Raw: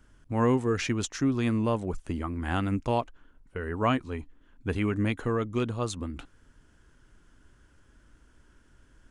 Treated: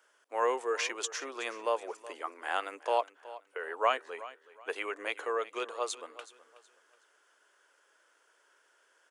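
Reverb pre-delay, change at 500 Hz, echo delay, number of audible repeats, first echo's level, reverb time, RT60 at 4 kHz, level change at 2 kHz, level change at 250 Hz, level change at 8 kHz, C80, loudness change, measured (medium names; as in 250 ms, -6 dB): no reverb, -2.5 dB, 372 ms, 2, -17.0 dB, no reverb, no reverb, 0.0 dB, -21.5 dB, 0.0 dB, no reverb, -5.0 dB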